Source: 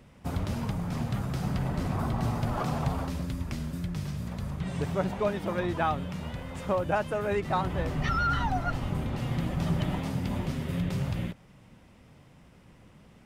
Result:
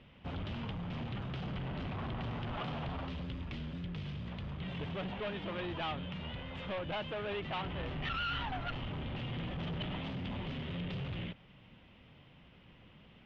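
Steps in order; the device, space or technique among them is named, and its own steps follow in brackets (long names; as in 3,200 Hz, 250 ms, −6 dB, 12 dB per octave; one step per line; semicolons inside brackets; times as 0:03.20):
overdriven synthesiser ladder filter (soft clipping −31 dBFS, distortion −9 dB; transistor ladder low-pass 3,500 Hz, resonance 60%)
level +6 dB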